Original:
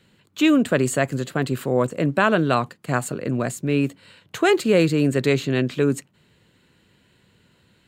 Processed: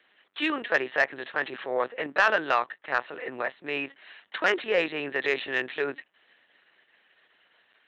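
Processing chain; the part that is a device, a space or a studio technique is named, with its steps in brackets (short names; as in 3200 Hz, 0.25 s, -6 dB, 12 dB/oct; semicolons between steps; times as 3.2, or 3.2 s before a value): talking toy (LPC vocoder at 8 kHz pitch kept; HPF 660 Hz 12 dB/oct; bell 1800 Hz +8 dB 0.29 oct; soft clip -10 dBFS, distortion -18 dB)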